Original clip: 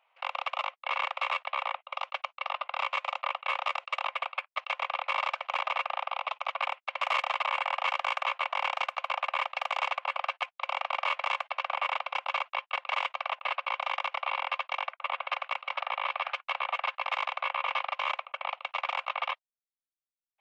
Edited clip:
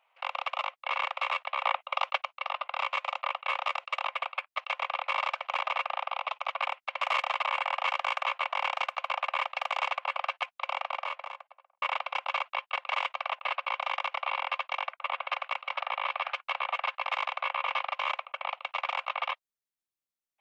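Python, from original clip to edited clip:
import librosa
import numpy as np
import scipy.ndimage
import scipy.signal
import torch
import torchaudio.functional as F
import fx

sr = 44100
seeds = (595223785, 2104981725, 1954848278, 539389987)

y = fx.studio_fade_out(x, sr, start_s=10.61, length_s=1.21)
y = fx.edit(y, sr, fx.clip_gain(start_s=1.64, length_s=0.54, db=5.5), tone=tone)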